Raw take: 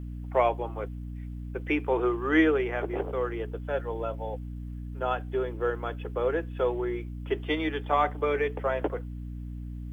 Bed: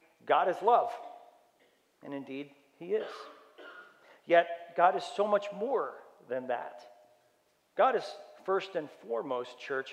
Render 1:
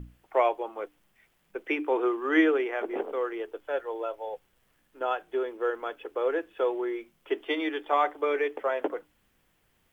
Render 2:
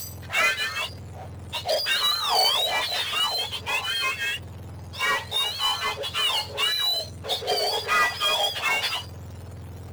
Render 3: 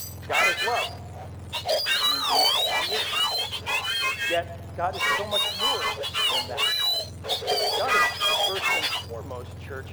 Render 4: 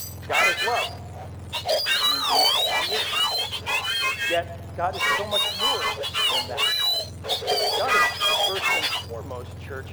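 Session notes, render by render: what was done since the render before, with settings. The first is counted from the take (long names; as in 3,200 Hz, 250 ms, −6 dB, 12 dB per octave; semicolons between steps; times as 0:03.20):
mains-hum notches 60/120/180/240/300 Hz
frequency axis turned over on the octave scale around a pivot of 1,200 Hz; power curve on the samples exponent 0.5
mix in bed −3 dB
level +1.5 dB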